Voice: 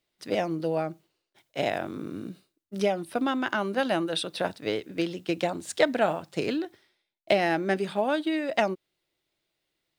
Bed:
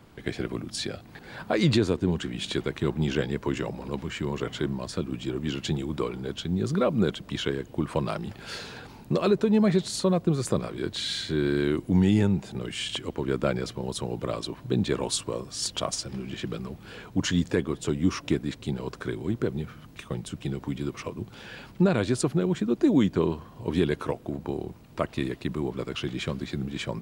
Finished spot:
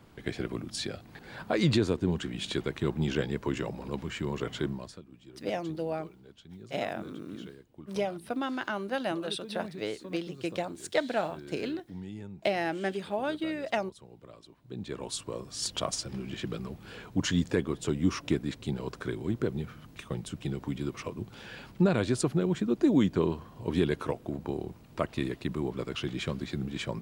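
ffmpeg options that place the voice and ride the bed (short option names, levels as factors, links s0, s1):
-filter_complex "[0:a]adelay=5150,volume=0.531[s0];[1:a]volume=5.62,afade=t=out:st=4.65:d=0.36:silence=0.133352,afade=t=in:st=14.61:d=1.13:silence=0.125893[s1];[s0][s1]amix=inputs=2:normalize=0"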